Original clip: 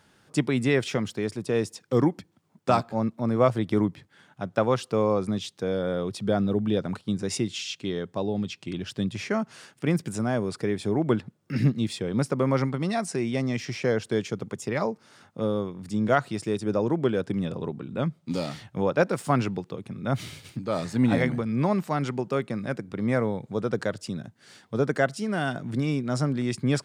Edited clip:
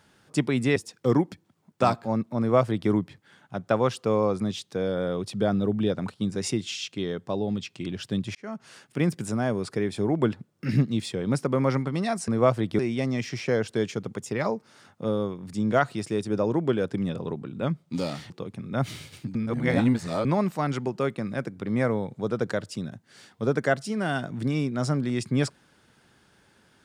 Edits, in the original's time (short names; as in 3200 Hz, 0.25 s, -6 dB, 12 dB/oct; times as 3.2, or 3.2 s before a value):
0.76–1.63 cut
3.26–3.77 copy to 13.15
9.22–9.89 fade in equal-power
18.66–19.62 cut
20.67–21.57 reverse